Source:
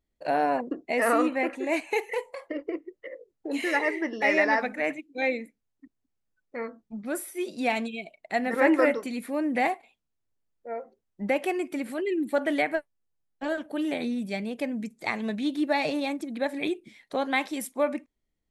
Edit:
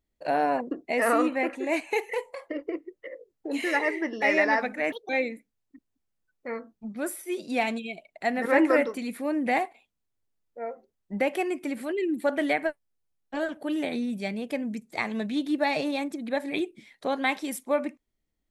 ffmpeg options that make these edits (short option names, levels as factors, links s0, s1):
-filter_complex "[0:a]asplit=3[s0][s1][s2];[s0]atrim=end=4.924[s3];[s1]atrim=start=4.92:end=5.18,asetpts=PTS-STARTPTS,asetrate=66591,aresample=44100,atrim=end_sample=7593,asetpts=PTS-STARTPTS[s4];[s2]atrim=start=5.176[s5];[s3][s4]acrossfade=d=0.004:c1=hsin:c2=hsin[s6];[s6][s5]acrossfade=d=0.004:c1=hsin:c2=hsin"